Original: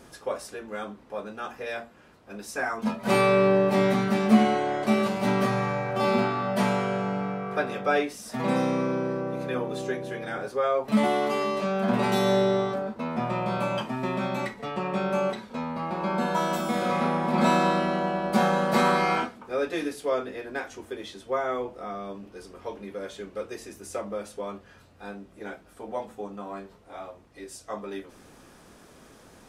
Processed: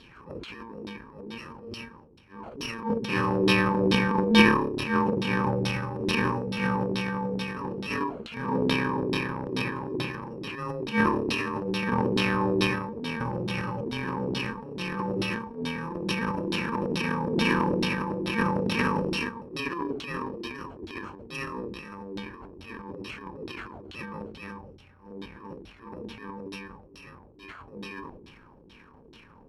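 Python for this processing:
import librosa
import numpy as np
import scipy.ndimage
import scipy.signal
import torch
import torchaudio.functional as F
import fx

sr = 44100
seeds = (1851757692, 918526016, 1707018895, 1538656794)

y = fx.bit_reversed(x, sr, seeds[0], block=64)
y = fx.filter_lfo_lowpass(y, sr, shape='saw_down', hz=2.3, low_hz=320.0, high_hz=3800.0, q=4.5)
y = fx.transient(y, sr, attack_db=-10, sustain_db=10)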